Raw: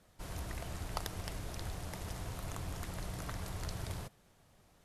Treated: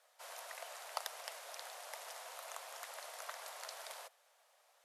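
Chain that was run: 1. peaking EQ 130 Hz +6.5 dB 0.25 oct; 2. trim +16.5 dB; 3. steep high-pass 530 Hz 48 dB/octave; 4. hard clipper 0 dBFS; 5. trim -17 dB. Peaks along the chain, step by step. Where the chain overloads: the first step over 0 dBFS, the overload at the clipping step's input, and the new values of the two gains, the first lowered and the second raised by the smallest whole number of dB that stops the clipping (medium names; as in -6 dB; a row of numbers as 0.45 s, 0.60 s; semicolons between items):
-18.5 dBFS, -2.0 dBFS, -3.0 dBFS, -3.0 dBFS, -20.0 dBFS; nothing clips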